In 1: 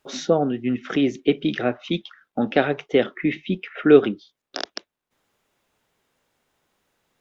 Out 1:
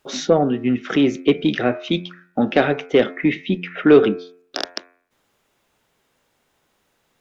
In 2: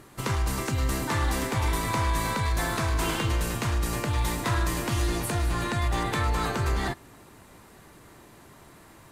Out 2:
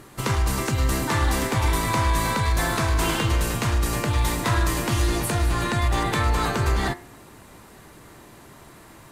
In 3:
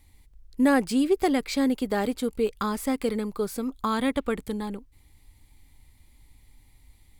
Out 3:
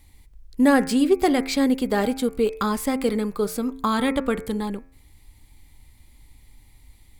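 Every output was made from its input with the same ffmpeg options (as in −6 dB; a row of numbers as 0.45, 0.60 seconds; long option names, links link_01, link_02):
-af "bandreject=frequency=88.58:width_type=h:width=4,bandreject=frequency=177.16:width_type=h:width=4,bandreject=frequency=265.74:width_type=h:width=4,bandreject=frequency=354.32:width_type=h:width=4,bandreject=frequency=442.9:width_type=h:width=4,bandreject=frequency=531.48:width_type=h:width=4,bandreject=frequency=620.06:width_type=h:width=4,bandreject=frequency=708.64:width_type=h:width=4,bandreject=frequency=797.22:width_type=h:width=4,bandreject=frequency=885.8:width_type=h:width=4,bandreject=frequency=974.38:width_type=h:width=4,bandreject=frequency=1062.96:width_type=h:width=4,bandreject=frequency=1151.54:width_type=h:width=4,bandreject=frequency=1240.12:width_type=h:width=4,bandreject=frequency=1328.7:width_type=h:width=4,bandreject=frequency=1417.28:width_type=h:width=4,bandreject=frequency=1505.86:width_type=h:width=4,bandreject=frequency=1594.44:width_type=h:width=4,bandreject=frequency=1683.02:width_type=h:width=4,bandreject=frequency=1771.6:width_type=h:width=4,bandreject=frequency=1860.18:width_type=h:width=4,bandreject=frequency=1948.76:width_type=h:width=4,bandreject=frequency=2037.34:width_type=h:width=4,bandreject=frequency=2125.92:width_type=h:width=4,bandreject=frequency=2214.5:width_type=h:width=4,bandreject=frequency=2303.08:width_type=h:width=4,bandreject=frequency=2391.66:width_type=h:width=4,bandreject=frequency=2480.24:width_type=h:width=4,bandreject=frequency=2568.82:width_type=h:width=4,acontrast=40,volume=-1dB"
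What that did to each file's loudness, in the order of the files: +3.0, +4.5, +4.0 LU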